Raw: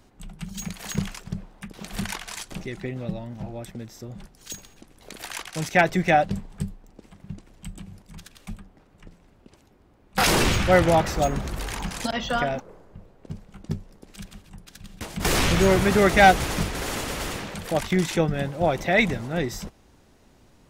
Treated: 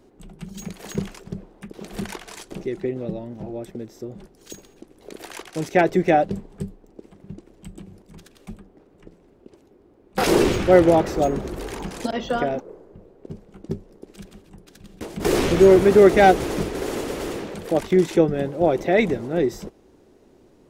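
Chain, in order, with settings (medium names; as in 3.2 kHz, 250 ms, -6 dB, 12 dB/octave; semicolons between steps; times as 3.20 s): peaking EQ 380 Hz +15 dB 1.4 oct; trim -5 dB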